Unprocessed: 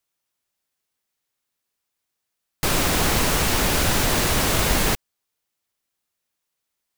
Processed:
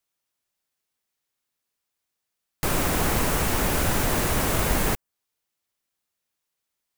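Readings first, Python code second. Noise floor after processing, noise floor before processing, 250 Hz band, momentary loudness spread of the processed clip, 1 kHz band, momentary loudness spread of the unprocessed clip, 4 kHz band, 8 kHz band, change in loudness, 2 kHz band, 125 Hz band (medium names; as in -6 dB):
-83 dBFS, -81 dBFS, -2.0 dB, 4 LU, -2.5 dB, 4 LU, -8.0 dB, -5.0 dB, -3.5 dB, -4.5 dB, -2.0 dB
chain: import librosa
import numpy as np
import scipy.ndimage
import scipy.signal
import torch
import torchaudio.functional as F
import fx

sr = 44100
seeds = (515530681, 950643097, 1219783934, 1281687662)

y = fx.dynamic_eq(x, sr, hz=4200.0, q=0.79, threshold_db=-41.0, ratio=4.0, max_db=-7)
y = F.gain(torch.from_numpy(y), -2.0).numpy()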